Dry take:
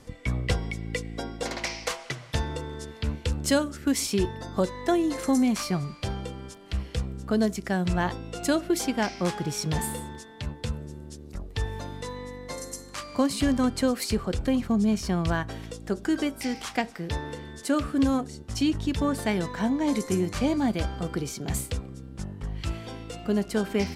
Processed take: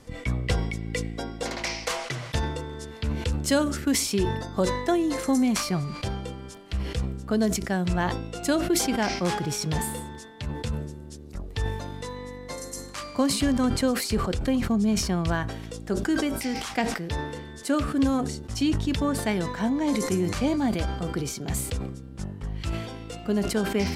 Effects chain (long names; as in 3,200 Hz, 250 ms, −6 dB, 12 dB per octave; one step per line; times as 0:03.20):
level that may fall only so fast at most 58 dB per second